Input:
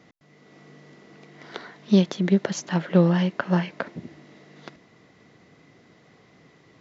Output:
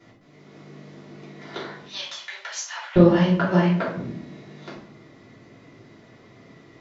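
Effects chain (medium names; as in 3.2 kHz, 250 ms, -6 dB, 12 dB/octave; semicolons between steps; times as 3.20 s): 1.81–2.96 s: Bessel high-pass 1.4 kHz, order 6; reverberation RT60 0.65 s, pre-delay 3 ms, DRR -8 dB; trim -6.5 dB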